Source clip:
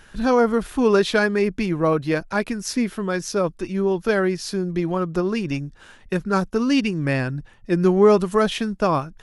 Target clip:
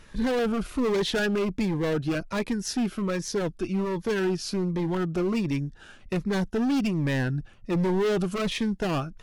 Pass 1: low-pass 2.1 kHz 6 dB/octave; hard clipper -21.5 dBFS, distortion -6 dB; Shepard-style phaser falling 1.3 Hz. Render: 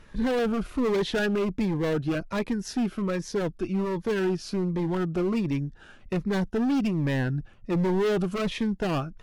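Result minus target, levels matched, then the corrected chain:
4 kHz band -3.0 dB
low-pass 5.6 kHz 6 dB/octave; hard clipper -21.5 dBFS, distortion -6 dB; Shepard-style phaser falling 1.3 Hz

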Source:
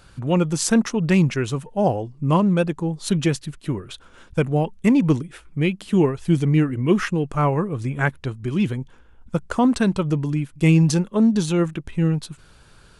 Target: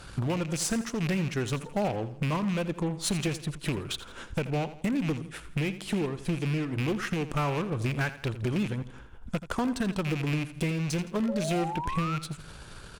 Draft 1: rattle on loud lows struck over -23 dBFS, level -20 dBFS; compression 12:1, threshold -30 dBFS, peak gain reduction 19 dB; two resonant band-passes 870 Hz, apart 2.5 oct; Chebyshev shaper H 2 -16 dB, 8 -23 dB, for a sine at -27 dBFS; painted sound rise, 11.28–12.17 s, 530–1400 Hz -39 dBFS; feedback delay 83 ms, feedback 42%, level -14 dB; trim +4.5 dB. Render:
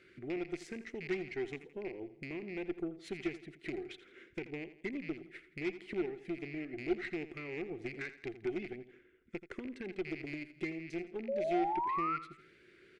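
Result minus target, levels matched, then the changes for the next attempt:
1 kHz band +4.5 dB
remove: two resonant band-passes 870 Hz, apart 2.5 oct

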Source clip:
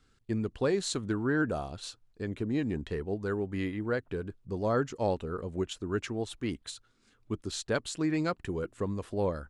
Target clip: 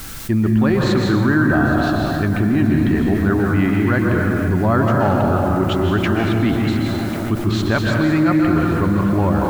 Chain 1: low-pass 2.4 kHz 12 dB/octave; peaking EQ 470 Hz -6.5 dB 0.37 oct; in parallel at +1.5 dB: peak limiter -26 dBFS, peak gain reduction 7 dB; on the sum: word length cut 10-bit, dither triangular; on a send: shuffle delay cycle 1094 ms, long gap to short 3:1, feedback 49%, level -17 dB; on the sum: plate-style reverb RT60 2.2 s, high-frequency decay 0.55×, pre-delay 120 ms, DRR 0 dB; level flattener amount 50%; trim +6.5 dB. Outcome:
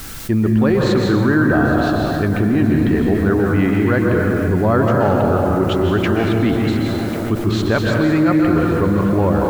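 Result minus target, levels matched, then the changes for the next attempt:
500 Hz band +2.5 dB
change: peaking EQ 470 Hz -16.5 dB 0.37 oct

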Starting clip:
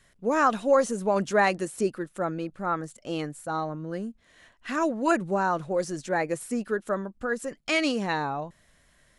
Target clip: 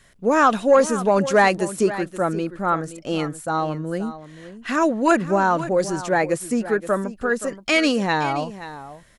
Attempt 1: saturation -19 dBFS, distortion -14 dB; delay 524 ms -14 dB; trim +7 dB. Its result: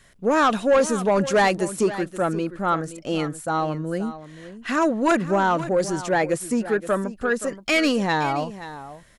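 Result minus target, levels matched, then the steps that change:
saturation: distortion +11 dB
change: saturation -11 dBFS, distortion -25 dB

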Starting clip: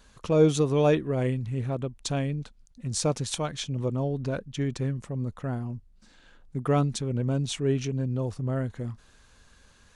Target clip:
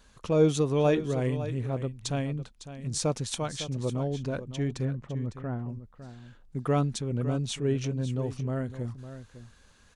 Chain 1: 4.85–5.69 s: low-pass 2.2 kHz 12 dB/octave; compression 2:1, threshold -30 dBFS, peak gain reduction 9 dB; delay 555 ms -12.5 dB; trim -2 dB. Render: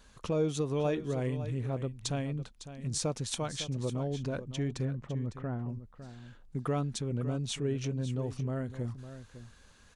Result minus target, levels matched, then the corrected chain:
compression: peak gain reduction +9 dB
4.85–5.69 s: low-pass 2.2 kHz 12 dB/octave; delay 555 ms -12.5 dB; trim -2 dB

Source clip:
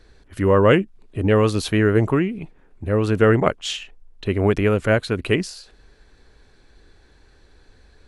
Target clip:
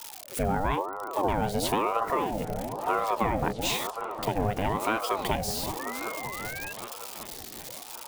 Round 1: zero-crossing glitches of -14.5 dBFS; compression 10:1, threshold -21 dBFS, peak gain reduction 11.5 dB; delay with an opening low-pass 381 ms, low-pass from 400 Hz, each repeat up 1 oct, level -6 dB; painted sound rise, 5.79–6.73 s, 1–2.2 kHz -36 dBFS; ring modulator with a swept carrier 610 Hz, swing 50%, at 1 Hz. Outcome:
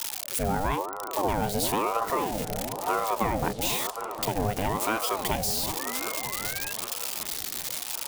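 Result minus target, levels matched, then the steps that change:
zero-crossing glitches: distortion +10 dB
change: zero-crossing glitches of -25 dBFS

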